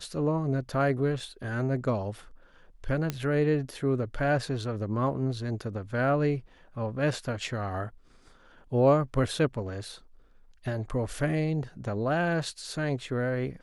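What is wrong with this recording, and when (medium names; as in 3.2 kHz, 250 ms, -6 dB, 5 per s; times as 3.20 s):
1.20 s: dropout 2.1 ms
3.10 s: pop -15 dBFS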